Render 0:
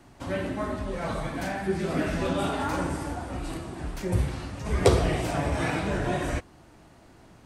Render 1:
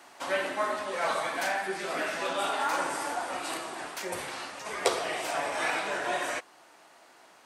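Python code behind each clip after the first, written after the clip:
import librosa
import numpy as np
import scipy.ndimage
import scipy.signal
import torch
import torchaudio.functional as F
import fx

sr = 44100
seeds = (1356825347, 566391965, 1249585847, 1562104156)

y = fx.rider(x, sr, range_db=4, speed_s=0.5)
y = scipy.signal.sosfilt(scipy.signal.butter(2, 690.0, 'highpass', fs=sr, output='sos'), y)
y = y * librosa.db_to_amplitude(3.5)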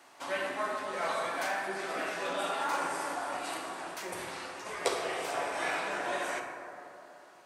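y = fx.rev_plate(x, sr, seeds[0], rt60_s=2.9, hf_ratio=0.3, predelay_ms=0, drr_db=2.5)
y = y * librosa.db_to_amplitude(-5.0)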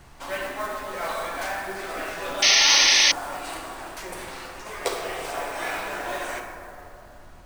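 y = fx.mod_noise(x, sr, seeds[1], snr_db=17)
y = fx.spec_paint(y, sr, seeds[2], shape='noise', start_s=2.42, length_s=0.7, low_hz=1700.0, high_hz=6400.0, level_db=-20.0)
y = fx.dmg_noise_colour(y, sr, seeds[3], colour='brown', level_db=-50.0)
y = y * librosa.db_to_amplitude(3.0)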